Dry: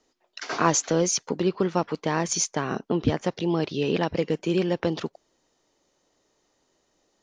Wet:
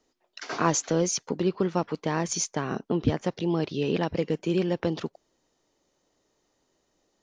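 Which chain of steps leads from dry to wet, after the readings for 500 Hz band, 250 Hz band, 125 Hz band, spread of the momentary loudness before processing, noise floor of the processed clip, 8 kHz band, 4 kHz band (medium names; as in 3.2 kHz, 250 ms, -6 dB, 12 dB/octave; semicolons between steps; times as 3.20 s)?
-2.0 dB, -1.5 dB, -0.5 dB, 7 LU, -74 dBFS, -3.5 dB, -3.5 dB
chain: bass shelf 360 Hz +3.5 dB; trim -3.5 dB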